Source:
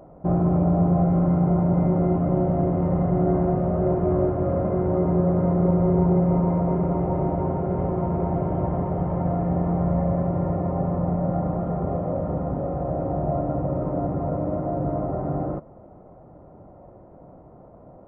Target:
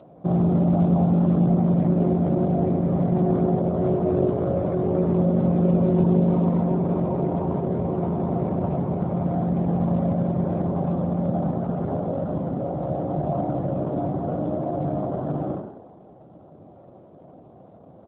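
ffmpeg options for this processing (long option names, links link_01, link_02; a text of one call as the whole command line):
ffmpeg -i in.wav -filter_complex "[0:a]bandreject=frequency=880:width=12,asplit=6[link_01][link_02][link_03][link_04][link_05][link_06];[link_02]adelay=97,afreqshift=50,volume=-8dB[link_07];[link_03]adelay=194,afreqshift=100,volume=-15.3dB[link_08];[link_04]adelay=291,afreqshift=150,volume=-22.7dB[link_09];[link_05]adelay=388,afreqshift=200,volume=-30dB[link_10];[link_06]adelay=485,afreqshift=250,volume=-37.3dB[link_11];[link_01][link_07][link_08][link_09][link_10][link_11]amix=inputs=6:normalize=0" -ar 8000 -c:a libopencore_amrnb -b:a 7400 out.amr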